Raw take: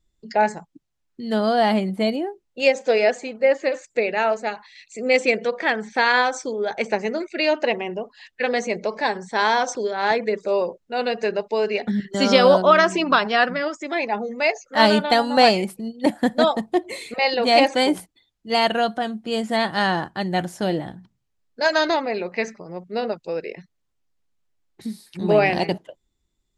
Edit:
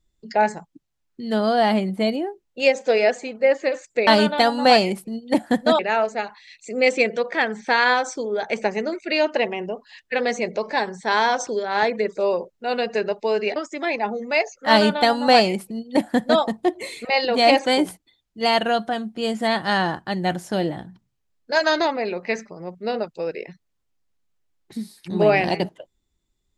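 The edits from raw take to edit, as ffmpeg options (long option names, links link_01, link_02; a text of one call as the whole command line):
ffmpeg -i in.wav -filter_complex "[0:a]asplit=4[link_01][link_02][link_03][link_04];[link_01]atrim=end=4.072[link_05];[link_02]atrim=start=14.788:end=16.512[link_06];[link_03]atrim=start=4.068:end=11.842[link_07];[link_04]atrim=start=13.648[link_08];[link_05][link_06]acrossfade=duration=0.004:curve1=hsin:curve2=hsin[link_09];[link_09][link_07]acrossfade=duration=0.004:curve1=hsin:curve2=hsin[link_10];[link_10][link_08]acrossfade=duration=0.004:curve1=hsin:curve2=hsin" out.wav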